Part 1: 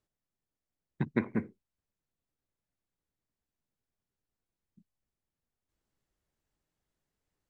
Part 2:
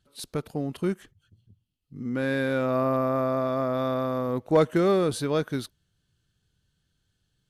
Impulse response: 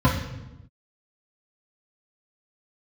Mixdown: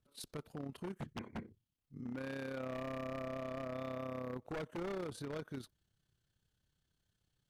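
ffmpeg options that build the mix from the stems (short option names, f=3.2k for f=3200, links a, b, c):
-filter_complex "[0:a]acompressor=threshold=-29dB:ratio=4,volume=-2.5dB[a];[1:a]acompressor=threshold=-34dB:ratio=2,adynamicequalizer=threshold=0.00282:dfrequency=2100:dqfactor=0.7:tfrequency=2100:tqfactor=0.7:attack=5:release=100:ratio=0.375:range=2:mode=cutabove:tftype=highshelf,volume=-6dB[b];[a][b]amix=inputs=2:normalize=0,tremolo=f=33:d=0.621,aeval=exprs='0.0168*(abs(mod(val(0)/0.0168+3,4)-2)-1)':c=same"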